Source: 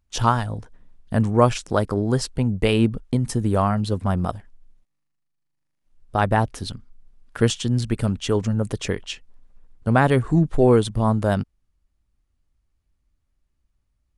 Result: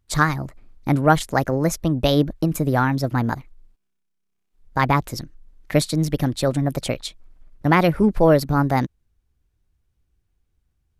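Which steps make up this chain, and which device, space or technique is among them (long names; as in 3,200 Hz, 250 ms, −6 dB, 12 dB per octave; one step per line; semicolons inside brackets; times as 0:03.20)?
nightcore (speed change +29%)
level +1 dB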